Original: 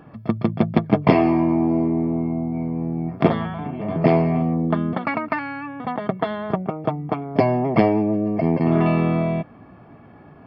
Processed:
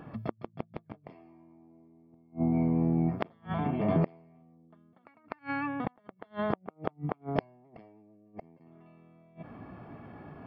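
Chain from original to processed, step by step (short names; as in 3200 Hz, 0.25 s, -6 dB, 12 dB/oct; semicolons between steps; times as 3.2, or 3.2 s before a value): flipped gate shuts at -15 dBFS, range -37 dB; gain -1.5 dB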